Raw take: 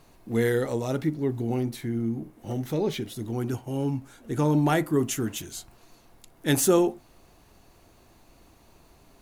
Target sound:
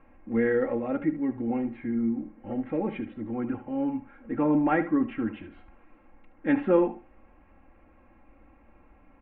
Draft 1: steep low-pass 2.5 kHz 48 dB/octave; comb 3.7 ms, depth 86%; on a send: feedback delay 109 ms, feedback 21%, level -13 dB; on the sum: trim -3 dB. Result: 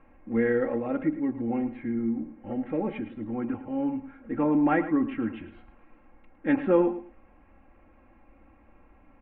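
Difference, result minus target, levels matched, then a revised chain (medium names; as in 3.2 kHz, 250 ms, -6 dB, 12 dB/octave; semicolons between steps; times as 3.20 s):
echo 36 ms late
steep low-pass 2.5 kHz 48 dB/octave; comb 3.7 ms, depth 86%; on a send: feedback delay 73 ms, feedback 21%, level -13 dB; on the sum: trim -3 dB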